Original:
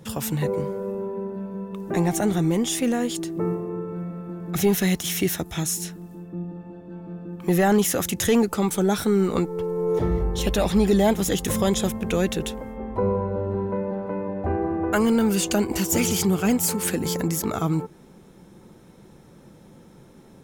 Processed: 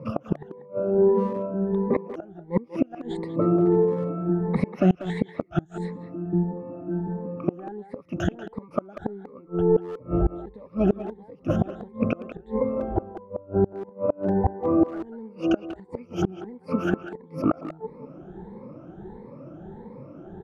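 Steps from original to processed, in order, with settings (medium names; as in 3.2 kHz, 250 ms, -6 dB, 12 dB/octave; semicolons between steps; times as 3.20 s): drifting ripple filter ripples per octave 0.94, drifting +1.5 Hz, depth 23 dB; Bessel low-pass 640 Hz, order 2; bass shelf 300 Hz -8.5 dB; inverted gate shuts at -18 dBFS, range -30 dB; speakerphone echo 190 ms, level -10 dB; trim +8.5 dB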